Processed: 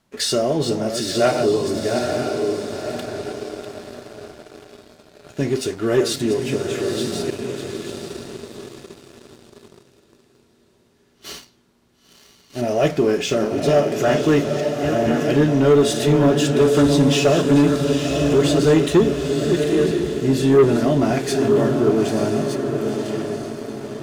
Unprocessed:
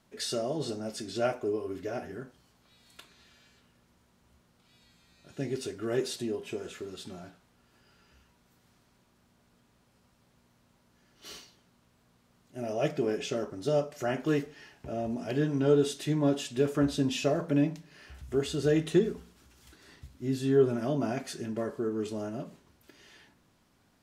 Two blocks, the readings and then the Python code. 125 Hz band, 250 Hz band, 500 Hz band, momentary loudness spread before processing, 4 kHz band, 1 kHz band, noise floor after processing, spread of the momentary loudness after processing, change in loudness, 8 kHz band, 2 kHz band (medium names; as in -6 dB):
+13.0 dB, +13.0 dB, +13.0 dB, 19 LU, +14.0 dB, +14.5 dB, -58 dBFS, 17 LU, +12.0 dB, +14.0 dB, +13.5 dB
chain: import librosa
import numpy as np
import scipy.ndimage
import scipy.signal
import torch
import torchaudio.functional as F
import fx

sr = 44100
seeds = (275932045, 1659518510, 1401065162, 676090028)

y = fx.reverse_delay(x, sr, ms=664, wet_db=-8.5)
y = fx.echo_diffused(y, sr, ms=938, feedback_pct=46, wet_db=-6.0)
y = fx.leveller(y, sr, passes=2)
y = F.gain(torch.from_numpy(y), 5.0).numpy()